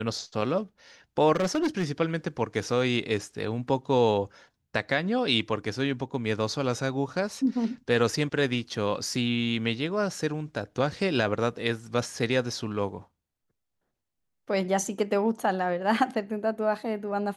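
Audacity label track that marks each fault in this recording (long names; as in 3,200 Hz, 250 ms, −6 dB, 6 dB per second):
1.350000	1.850000	clipping −21.5 dBFS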